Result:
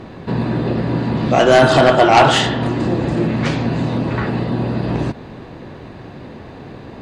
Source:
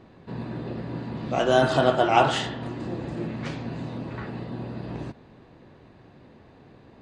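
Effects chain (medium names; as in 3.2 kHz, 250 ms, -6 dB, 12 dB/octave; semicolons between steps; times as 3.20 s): in parallel at -0.5 dB: compression, threshold -35 dBFS, peak gain reduction 20 dB; on the sum: sine folder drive 8 dB, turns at -3 dBFS; trim -1 dB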